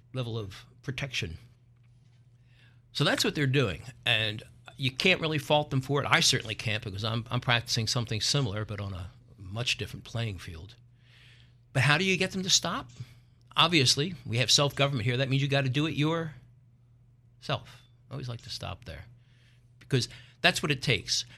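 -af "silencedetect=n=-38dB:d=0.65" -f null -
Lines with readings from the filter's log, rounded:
silence_start: 1.35
silence_end: 2.95 | silence_duration: 1.60
silence_start: 10.65
silence_end: 11.75 | silence_duration: 1.10
silence_start: 16.31
silence_end: 17.45 | silence_duration: 1.13
silence_start: 19.01
silence_end: 19.82 | silence_duration: 0.81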